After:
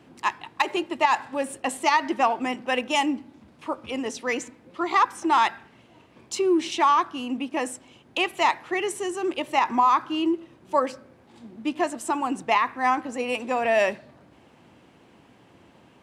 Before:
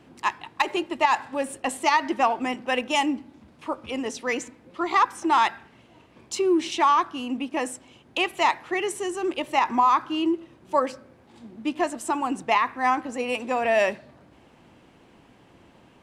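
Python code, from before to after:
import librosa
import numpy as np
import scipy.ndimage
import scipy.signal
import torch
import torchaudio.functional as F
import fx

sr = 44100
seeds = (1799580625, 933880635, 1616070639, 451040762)

y = scipy.signal.sosfilt(scipy.signal.butter(2, 69.0, 'highpass', fs=sr, output='sos'), x)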